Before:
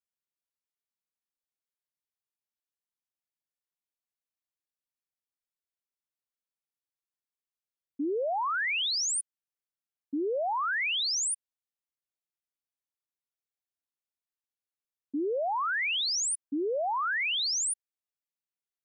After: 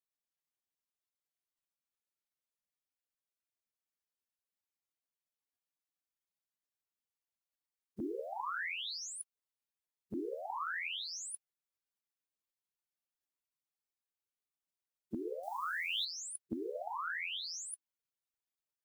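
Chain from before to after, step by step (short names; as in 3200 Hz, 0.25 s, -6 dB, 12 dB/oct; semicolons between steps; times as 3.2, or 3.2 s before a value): spectral gate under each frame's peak -15 dB weak; 15.43–16.05 tone controls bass +15 dB, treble +15 dB; gain +18 dB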